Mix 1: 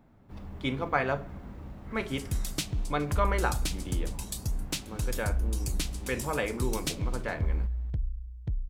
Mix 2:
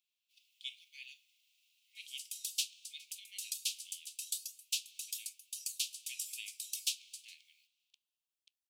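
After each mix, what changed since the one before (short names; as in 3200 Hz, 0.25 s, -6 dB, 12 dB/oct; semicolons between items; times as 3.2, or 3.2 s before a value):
speech -3.0 dB; master: add steep high-pass 2600 Hz 72 dB/oct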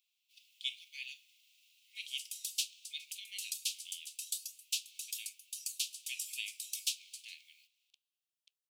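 speech +6.0 dB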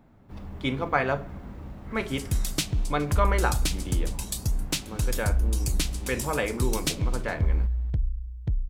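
background +5.0 dB; master: remove steep high-pass 2600 Hz 72 dB/oct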